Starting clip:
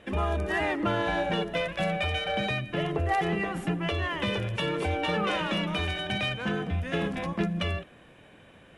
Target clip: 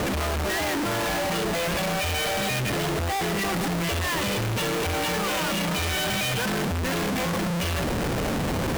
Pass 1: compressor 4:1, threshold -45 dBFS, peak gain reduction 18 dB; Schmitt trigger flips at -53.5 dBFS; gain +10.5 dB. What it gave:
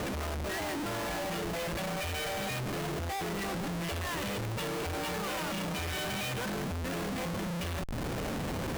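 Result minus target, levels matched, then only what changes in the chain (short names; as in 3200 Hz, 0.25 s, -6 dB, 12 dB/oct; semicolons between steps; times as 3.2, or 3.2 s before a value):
compressor: peak gain reduction +8.5 dB
change: compressor 4:1, threshold -33.5 dBFS, peak gain reduction 9.5 dB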